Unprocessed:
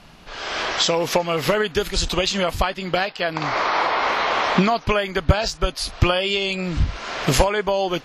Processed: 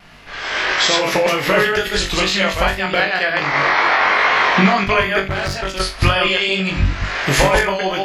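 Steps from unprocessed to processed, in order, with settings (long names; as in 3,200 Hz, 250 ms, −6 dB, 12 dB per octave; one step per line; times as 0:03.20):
delay that plays each chunk backwards 110 ms, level −1.5 dB
on a send: flutter between parallel walls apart 3.6 metres, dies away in 0.26 s
on the sum: tape wow and flutter 29 cents
0:05.25–0:05.80: tube saturation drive 17 dB, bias 0.5
parametric band 1,900 Hz +9 dB 0.91 octaves
level −1.5 dB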